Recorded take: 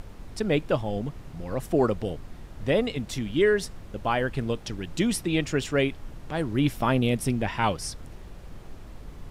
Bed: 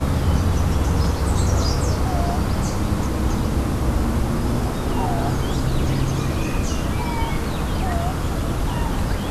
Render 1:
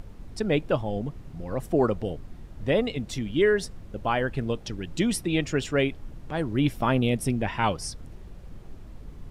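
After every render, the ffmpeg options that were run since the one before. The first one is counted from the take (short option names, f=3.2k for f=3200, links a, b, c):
-af "afftdn=nr=6:nf=-44"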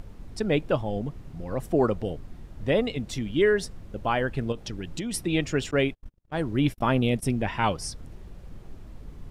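-filter_complex "[0:a]asettb=1/sr,asplit=3[a][b][c];[a]atrim=end=4.524[d];[b]atrim=start=4.52:end=5.14,asetpts=PTS-STARTPTS,afade=t=in:d=0.004:c=qsin,afade=t=out:st=0.616:d=0.004:c=qsin,acompressor=threshold=-28dB:ratio=6:attack=3.2:release=140:knee=1:detection=peak[e];[c]atrim=start=5.136[f];[d][e]acrossfade=d=0.004:c1=hsin:c2=qsin[g];[g][f]acrossfade=d=0.004:c1=qsin:c2=hsin,asettb=1/sr,asplit=3[h][i][j];[h]atrim=end=5.714[k];[i]atrim=start=5.71:end=7.23,asetpts=PTS-STARTPTS,afade=t=in:d=0.004:c=qsin,afade=t=out:st=1.516:d=0.004:c=qsin,agate=range=-42dB:threshold=-34dB:ratio=16:release=100:detection=peak[l];[j]atrim=start=7.226[m];[k][l]acrossfade=d=0.004:c1=hsin:c2=qsin[n];[n][m]acrossfade=d=0.004:c1=qsin:c2=hsin"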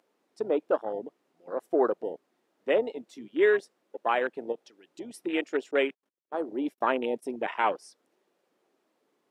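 -af "highpass=f=330:w=0.5412,highpass=f=330:w=1.3066,afwtdn=0.0282"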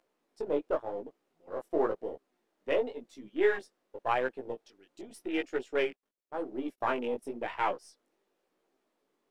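-af "aeval=exprs='if(lt(val(0),0),0.708*val(0),val(0))':c=same,flanger=delay=15:depth=5.7:speed=0.92"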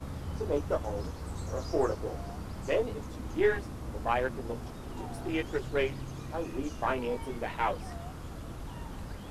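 -filter_complex "[1:a]volume=-19dB[a];[0:a][a]amix=inputs=2:normalize=0"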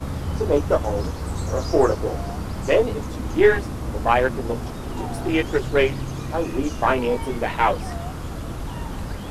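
-af "volume=11dB"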